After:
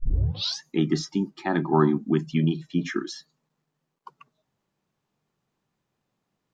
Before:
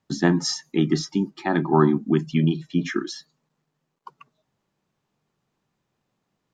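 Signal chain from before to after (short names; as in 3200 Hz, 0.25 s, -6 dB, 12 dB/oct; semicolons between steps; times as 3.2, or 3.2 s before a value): tape start at the beginning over 0.61 s; gain -2.5 dB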